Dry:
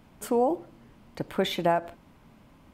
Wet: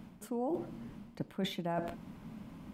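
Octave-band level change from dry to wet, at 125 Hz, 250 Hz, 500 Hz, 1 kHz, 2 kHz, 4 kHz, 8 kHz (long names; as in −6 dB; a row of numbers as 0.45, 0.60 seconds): −3.5, −5.5, −12.0, −12.5, −11.0, −9.0, −11.0 decibels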